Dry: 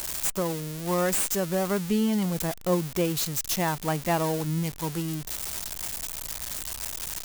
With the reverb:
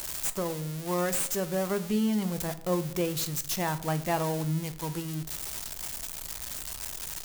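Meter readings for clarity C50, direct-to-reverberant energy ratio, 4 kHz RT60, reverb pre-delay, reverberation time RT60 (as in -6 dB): 15.5 dB, 11.0 dB, 0.40 s, 7 ms, 0.65 s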